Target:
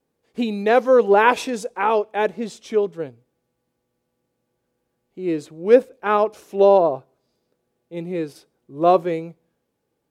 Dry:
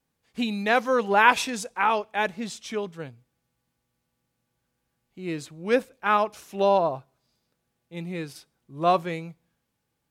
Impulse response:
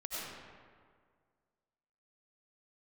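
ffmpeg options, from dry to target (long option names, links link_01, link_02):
-af "equalizer=frequency=420:width=0.84:gain=14,volume=-2.5dB"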